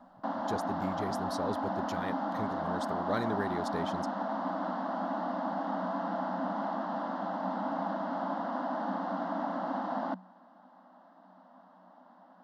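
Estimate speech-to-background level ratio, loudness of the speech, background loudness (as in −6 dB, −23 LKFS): −4.0 dB, −38.5 LKFS, −34.5 LKFS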